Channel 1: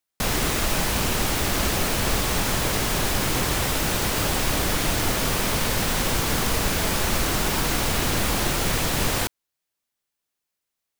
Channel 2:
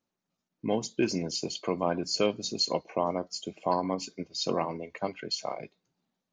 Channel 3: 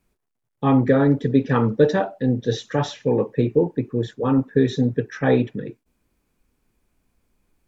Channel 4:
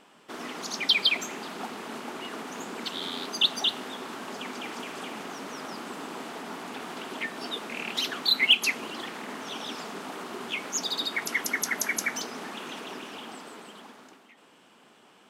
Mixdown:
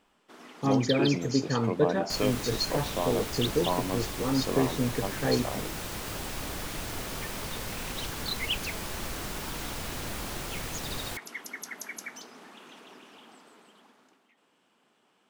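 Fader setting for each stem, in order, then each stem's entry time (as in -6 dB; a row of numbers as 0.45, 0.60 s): -13.0, -2.5, -9.0, -11.5 dB; 1.90, 0.00, 0.00, 0.00 s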